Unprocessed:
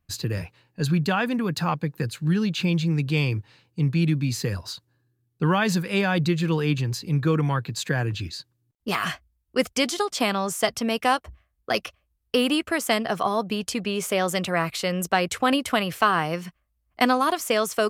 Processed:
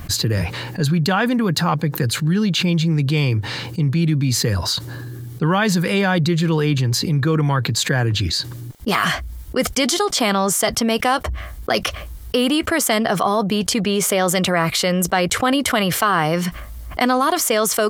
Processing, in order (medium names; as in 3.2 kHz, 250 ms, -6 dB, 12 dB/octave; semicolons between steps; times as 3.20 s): band-stop 2.6 kHz, Q 11; level flattener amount 70%; trim +1 dB